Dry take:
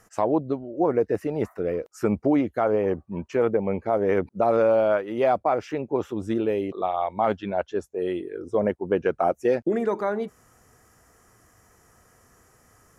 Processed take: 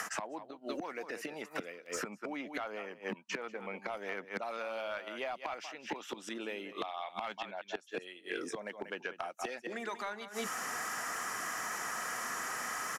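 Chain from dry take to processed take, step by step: bell 420 Hz -12 dB 1.7 oct; on a send: echo 0.187 s -12.5 dB; on the sum: flipped gate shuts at -29 dBFS, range -35 dB; HPF 200 Hz 24 dB/oct; reverse; compressor 5:1, threshold -59 dBFS, peak gain reduction 20.5 dB; reverse; overdrive pedal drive 18 dB, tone 3700 Hz, clips at -39 dBFS; three-band squash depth 100%; gain +16 dB

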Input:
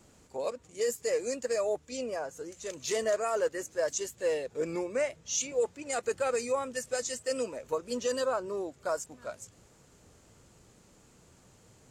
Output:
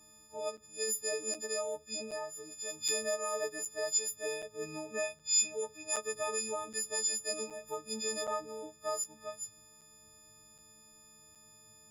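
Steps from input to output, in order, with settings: frequency quantiser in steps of 6 st; on a send at -21 dB: bell 410 Hz +13.5 dB 1.5 oct + reverb RT60 0.30 s, pre-delay 3 ms; on the sum: crackling interface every 0.77 s, samples 256, zero, from 0.57; gain -8 dB

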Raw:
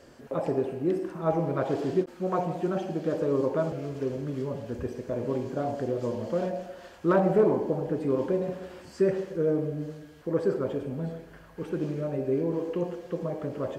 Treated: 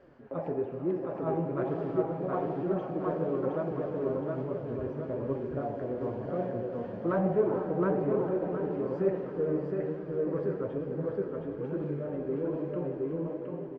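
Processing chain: ending faded out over 1.32 s; feedback echo 0.717 s, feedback 36%, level -3 dB; in parallel at -12 dB: hard clip -27.5 dBFS, distortion -7 dB; on the sum: LPF 1900 Hz 12 dB/oct; diffused feedback echo 0.468 s, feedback 44%, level -9 dB; flange 1.1 Hz, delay 4.8 ms, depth 8.1 ms, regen +49%; gain -2.5 dB

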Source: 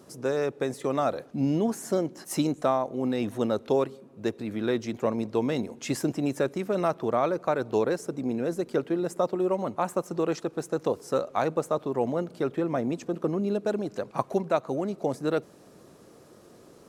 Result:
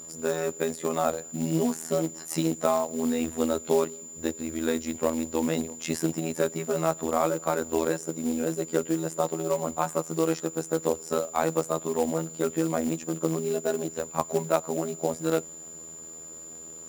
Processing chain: robotiser 81 Hz; whine 7100 Hz -43 dBFS; short-mantissa float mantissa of 2-bit; gain +2.5 dB

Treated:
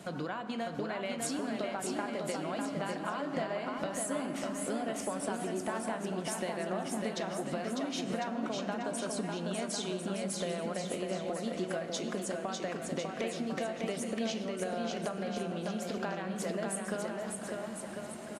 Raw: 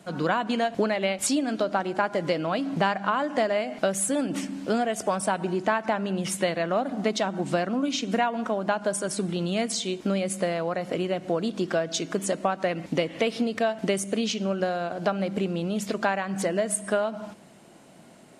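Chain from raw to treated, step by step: compressor 4:1, threshold -40 dBFS, peak gain reduction 18.5 dB; bouncing-ball echo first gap 0.6 s, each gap 0.75×, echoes 5; reverb RT60 2.5 s, pre-delay 6 ms, DRR 8.5 dB; gain +2.5 dB

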